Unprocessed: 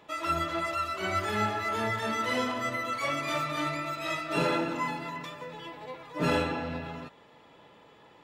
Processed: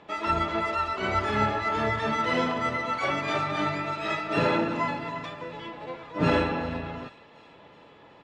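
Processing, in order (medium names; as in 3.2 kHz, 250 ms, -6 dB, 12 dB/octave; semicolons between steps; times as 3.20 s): harmony voices -7 st -8 dB; distance through air 110 m; feedback echo behind a high-pass 372 ms, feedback 60%, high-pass 2.9 kHz, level -16 dB; trim +3.5 dB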